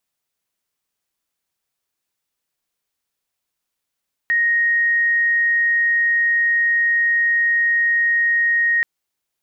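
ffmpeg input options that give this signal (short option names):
-f lavfi -i "sine=f=1870:d=4.53:r=44100,volume=4.06dB"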